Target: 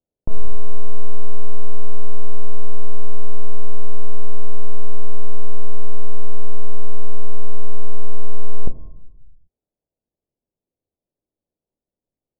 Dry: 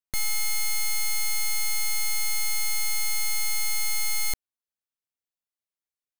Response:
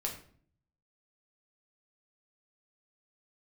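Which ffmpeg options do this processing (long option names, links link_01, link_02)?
-filter_complex "[0:a]lowpass=frequency=1200:width=0.5412,lowpass=frequency=1200:width=1.3066,asoftclip=type=tanh:threshold=-25dB,asplit=2[link_01][link_02];[1:a]atrim=start_sample=2205,afade=type=out:start_time=0.45:duration=0.01,atrim=end_sample=20286[link_03];[link_02][link_03]afir=irnorm=-1:irlink=0,volume=-3.5dB[link_04];[link_01][link_04]amix=inputs=2:normalize=0,asetrate=22050,aresample=44100,volume=11dB"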